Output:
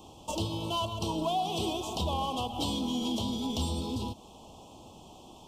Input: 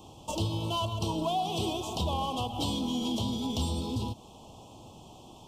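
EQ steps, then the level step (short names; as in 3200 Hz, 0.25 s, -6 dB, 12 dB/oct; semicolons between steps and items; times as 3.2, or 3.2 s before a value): bell 120 Hz -7 dB 0.55 oct; 0.0 dB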